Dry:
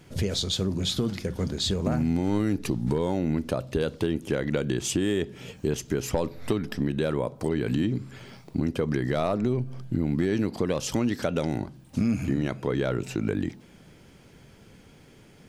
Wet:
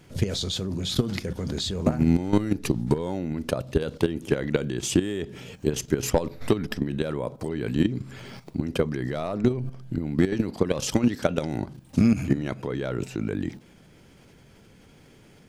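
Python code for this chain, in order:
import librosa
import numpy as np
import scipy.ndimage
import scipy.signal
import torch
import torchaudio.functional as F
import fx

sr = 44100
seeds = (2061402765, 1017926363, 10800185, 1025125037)

y = fx.level_steps(x, sr, step_db=12)
y = F.gain(torch.from_numpy(y), 7.0).numpy()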